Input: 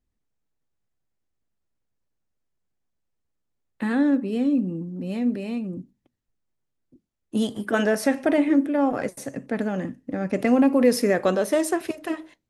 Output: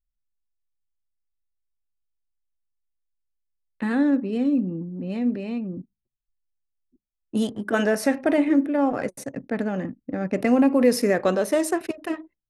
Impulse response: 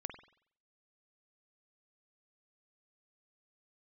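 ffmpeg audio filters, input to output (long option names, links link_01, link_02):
-af "bandreject=frequency=3300:width=16,anlmdn=0.398"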